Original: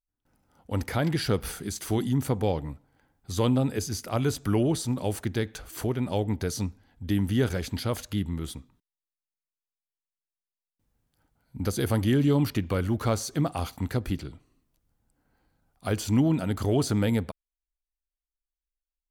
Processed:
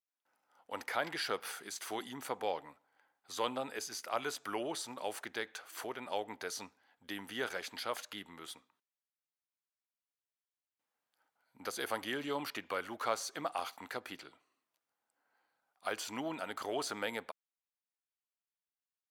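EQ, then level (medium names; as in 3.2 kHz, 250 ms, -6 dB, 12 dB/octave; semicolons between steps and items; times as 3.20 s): high-pass 820 Hz 12 dB/octave; treble shelf 3.8 kHz -9.5 dB; 0.0 dB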